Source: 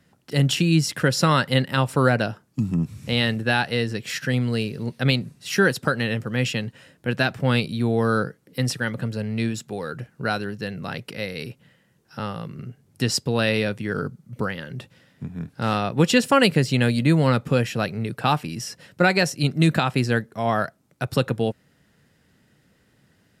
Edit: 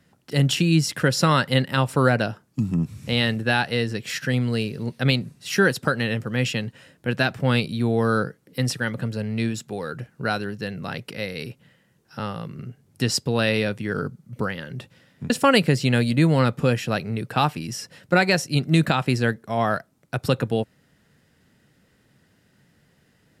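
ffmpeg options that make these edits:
ffmpeg -i in.wav -filter_complex "[0:a]asplit=2[link_01][link_02];[link_01]atrim=end=15.302[link_03];[link_02]atrim=start=16.178[link_04];[link_03][link_04]acrossfade=duration=0.004:curve1=hsin:curve2=hsin" out.wav

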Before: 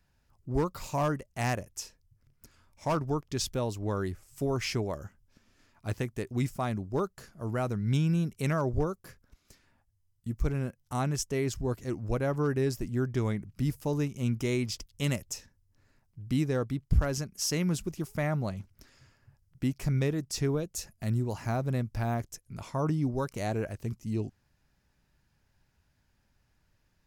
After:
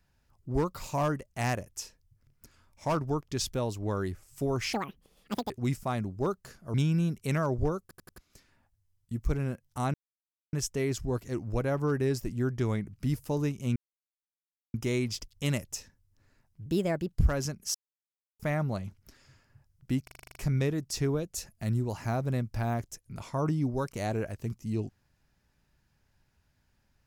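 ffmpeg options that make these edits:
ffmpeg -i in.wav -filter_complex "[0:a]asplit=22[link_01][link_02][link_03][link_04][link_05][link_06][link_07][link_08][link_09][link_10][link_11][link_12][link_13][link_14][link_15][link_16][link_17][link_18][link_19][link_20][link_21][link_22];[link_01]atrim=end=4.734[link_23];[link_02]atrim=start=4.73:end=6.23,asetpts=PTS-STARTPTS,asetrate=85995,aresample=44100,atrim=end_sample=33923,asetpts=PTS-STARTPTS[link_24];[link_03]atrim=start=6.226:end=7.472[link_25];[link_04]atrim=start=7.888:end=9.062[link_26];[link_05]atrim=start=8.968:end=9.062[link_27];[link_06]atrim=start=8.968:end=9.062[link_28];[link_07]atrim=start=8.968:end=9.062[link_29];[link_08]atrim=start=9.328:end=11.09,asetpts=PTS-STARTPTS,afade=type=out:start_time=1.758:duration=0.004:curve=hsin,apad=pad_dur=0.59[link_30];[link_09]atrim=start=11.09:end=14.32,asetpts=PTS-STARTPTS,afade=type=in:duration=0.004:curve=hsin,afade=type=out:start_time=3.226:duration=0.004:curve=hsin,apad=pad_dur=0.98[link_31];[link_10]atrim=start=14.32:end=16.244,asetpts=PTS-STARTPTS,afade=type=in:duration=0.004:curve=hsin[link_32];[link_11]atrim=start=16.24:end=16.85,asetpts=PTS-STARTPTS,asetrate=57771,aresample=44100,atrim=end_sample=20535,asetpts=PTS-STARTPTS[link_33];[link_12]atrim=start=16.846:end=17.47,asetpts=PTS-STARTPTS,afade=type=out:start_time=0.62:duration=0.004:curve=hsin[link_34];[link_13]atrim=start=17.47:end=18.12,asetpts=PTS-STARTPTS,volume=0[link_35];[link_14]atrim=start=18.12:end=19.802,asetpts=PTS-STARTPTS,afade=type=in:duration=0.004:curve=hsin[link_36];[link_15]atrim=start=19.758:end=19.802[link_37];[link_16]atrim=start=19.758:end=19.802[link_38];[link_17]atrim=start=19.758:end=19.802[link_39];[link_18]atrim=start=19.758:end=19.802[link_40];[link_19]atrim=start=19.758:end=19.802[link_41];[link_20]atrim=start=19.758:end=19.802[link_42];[link_21]atrim=start=19.758:end=19.802[link_43];[link_22]atrim=start=19.758[link_44];[link_23][link_24]acrossfade=duration=0.004:curve1=hsin:curve2=hsin[link_45];[link_45][link_25]acrossfade=duration=0.004:curve1=hsin:curve2=hsin[link_46];[link_46][link_26]acrossfade=duration=0.004:curve1=hsin:curve2=hsin[link_47];[link_47][link_27]acrossfade=duration=0.004:curve1=hsin:curve2=hsin[link_48];[link_48][link_28]acrossfade=duration=0.004:curve1=hsin:curve2=hsin[link_49];[link_49][link_29]acrossfade=duration=0.004:curve1=hsin:curve2=hsin[link_50];[link_30][link_31][link_32]concat=n=3:v=0:a=1[link_51];[link_50][link_51]acrossfade=duration=0.004:curve1=hsin:curve2=hsin[link_52];[link_52][link_33]acrossfade=duration=0.004:curve1=hsin:curve2=hsin[link_53];[link_34][link_35][link_36]concat=n=3:v=0:a=1[link_54];[link_53][link_54]acrossfade=duration=0.004:curve1=hsin:curve2=hsin[link_55];[link_55][link_37]acrossfade=duration=0.004:curve1=hsin:curve2=hsin[link_56];[link_56][link_38]acrossfade=duration=0.004:curve1=hsin:curve2=hsin[link_57];[link_57][link_39]acrossfade=duration=0.004:curve1=hsin:curve2=hsin[link_58];[link_58][link_40]acrossfade=duration=0.004:curve1=hsin:curve2=hsin[link_59];[link_59][link_41]acrossfade=duration=0.004:curve1=hsin:curve2=hsin[link_60];[link_60][link_42]acrossfade=duration=0.004:curve1=hsin:curve2=hsin[link_61];[link_61][link_43]acrossfade=duration=0.004:curve1=hsin:curve2=hsin[link_62];[link_62][link_44]acrossfade=duration=0.004:curve1=hsin:curve2=hsin" out.wav

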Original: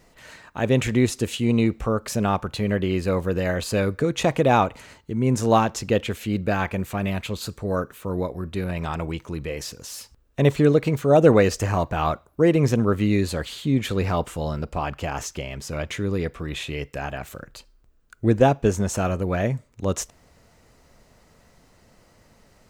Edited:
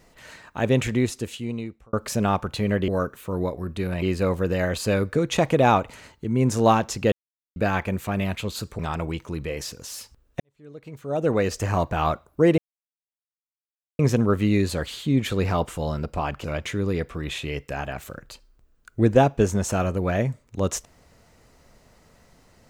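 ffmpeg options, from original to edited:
ffmpeg -i in.wav -filter_complex "[0:a]asplit=10[link_01][link_02][link_03][link_04][link_05][link_06][link_07][link_08][link_09][link_10];[link_01]atrim=end=1.93,asetpts=PTS-STARTPTS,afade=type=out:start_time=0.64:duration=1.29[link_11];[link_02]atrim=start=1.93:end=2.882,asetpts=PTS-STARTPTS,afade=type=in:duration=0.004:curve=hsin[link_12];[link_03]atrim=start=7.648:end=8.792[link_13];[link_04]atrim=start=2.878:end=5.98,asetpts=PTS-STARTPTS,afade=type=out:start_time=3.098:duration=0.004:curve=hsin[link_14];[link_05]atrim=start=5.98:end=6.42,asetpts=PTS-STARTPTS,volume=0[link_15];[link_06]atrim=start=6.42:end=7.652,asetpts=PTS-STARTPTS,afade=type=in:duration=0.004:curve=hsin[link_16];[link_07]atrim=start=8.788:end=10.4,asetpts=PTS-STARTPTS,afade=type=out:start_time=1.608:duration=0.004:curve=hsin[link_17];[link_08]atrim=start=10.4:end=12.58,asetpts=PTS-STARTPTS,afade=type=in:duration=1.38:curve=qua,afade=type=out:start_time=2.176:duration=0.004:curve=hsin,apad=pad_dur=1.41[link_18];[link_09]atrim=start=12.58:end=15.032,asetpts=PTS-STARTPTS,afade=type=in:duration=0.004:curve=hsin[link_19];[link_10]atrim=start=15.688[link_20];[link_11][link_12]concat=n=2:v=0:a=1[link_21];[link_21][link_13]acrossfade=duration=0.004:curve1=hsin:curve2=hsin[link_22];[link_14][link_15][link_16]concat=n=3:v=0:a=1[link_23];[link_22][link_23]acrossfade=duration=0.004:curve1=hsin:curve2=hsin[link_24];[link_17][link_18][link_19]concat=n=3:v=0:a=1[link_25];[link_24][link_25]acrossfade=duration=0.004:curve1=hsin:curve2=hsin[link_26];[link_26][link_20]acrossfade=duration=0.004:curve1=hsin:curve2=hsin" out.wav

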